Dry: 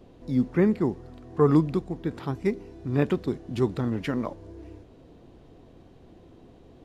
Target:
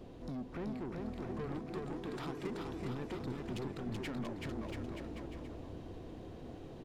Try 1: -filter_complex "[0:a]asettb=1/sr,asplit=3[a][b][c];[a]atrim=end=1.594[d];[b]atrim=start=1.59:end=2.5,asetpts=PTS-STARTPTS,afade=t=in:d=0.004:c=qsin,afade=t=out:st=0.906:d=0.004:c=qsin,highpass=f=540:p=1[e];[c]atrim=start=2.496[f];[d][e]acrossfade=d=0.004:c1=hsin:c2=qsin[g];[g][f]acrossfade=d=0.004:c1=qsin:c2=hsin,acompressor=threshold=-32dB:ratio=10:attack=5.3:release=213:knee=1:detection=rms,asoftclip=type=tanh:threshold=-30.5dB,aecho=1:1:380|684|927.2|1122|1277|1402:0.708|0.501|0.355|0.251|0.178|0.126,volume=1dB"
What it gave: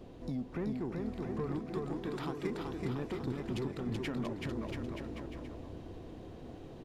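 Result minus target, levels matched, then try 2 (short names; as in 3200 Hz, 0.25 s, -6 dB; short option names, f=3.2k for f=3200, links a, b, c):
soft clip: distortion -9 dB
-filter_complex "[0:a]asettb=1/sr,asplit=3[a][b][c];[a]atrim=end=1.594[d];[b]atrim=start=1.59:end=2.5,asetpts=PTS-STARTPTS,afade=t=in:d=0.004:c=qsin,afade=t=out:st=0.906:d=0.004:c=qsin,highpass=f=540:p=1[e];[c]atrim=start=2.496[f];[d][e]acrossfade=d=0.004:c1=hsin:c2=qsin[g];[g][f]acrossfade=d=0.004:c1=qsin:c2=hsin,acompressor=threshold=-32dB:ratio=10:attack=5.3:release=213:knee=1:detection=rms,asoftclip=type=tanh:threshold=-39dB,aecho=1:1:380|684|927.2|1122|1277|1402:0.708|0.501|0.355|0.251|0.178|0.126,volume=1dB"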